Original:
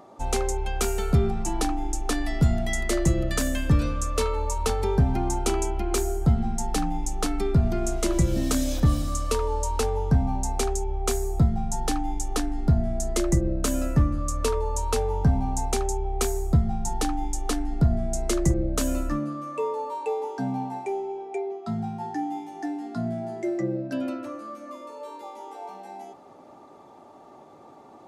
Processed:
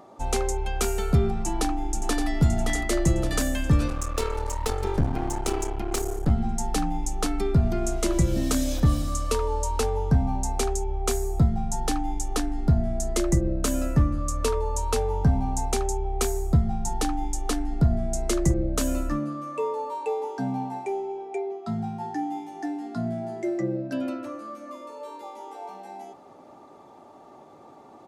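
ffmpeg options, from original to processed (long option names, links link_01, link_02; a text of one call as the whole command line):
ffmpeg -i in.wav -filter_complex "[0:a]asplit=2[link_01][link_02];[link_02]afade=type=in:start_time=1.37:duration=0.01,afade=type=out:start_time=2.25:duration=0.01,aecho=0:1:570|1140|1710|2280|2850|3420|3990|4560|5130:0.421697|0.274103|0.178167|0.115808|0.0752755|0.048929|0.0318039|0.0206725|0.0134371[link_03];[link_01][link_03]amix=inputs=2:normalize=0,asettb=1/sr,asplit=3[link_04][link_05][link_06];[link_04]atrim=end=3.884[link_07];[link_05]atrim=start=3.88:end=6.31,asetpts=PTS-STARTPTS,afade=type=in:duration=0.004:curve=qsin,afade=type=out:start_time=2.426:duration=0.004:curve=qsin,aeval=exprs='clip(val(0),-1,0.0251)':channel_layout=same[link_08];[link_06]atrim=start=6.306[link_09];[link_07][link_08]acrossfade=duration=0.004:curve1=hsin:curve2=qsin[link_10];[link_10][link_09]acrossfade=duration=0.004:curve1=qsin:curve2=hsin" out.wav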